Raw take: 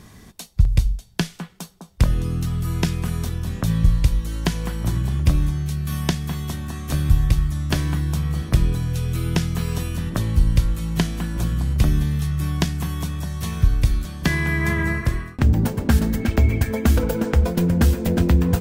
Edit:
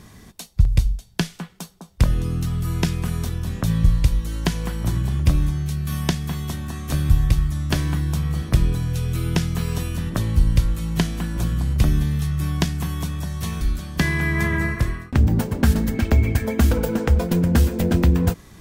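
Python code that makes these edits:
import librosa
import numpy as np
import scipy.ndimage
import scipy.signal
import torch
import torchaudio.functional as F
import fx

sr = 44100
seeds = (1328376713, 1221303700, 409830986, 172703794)

y = fx.edit(x, sr, fx.cut(start_s=13.61, length_s=0.26), tone=tone)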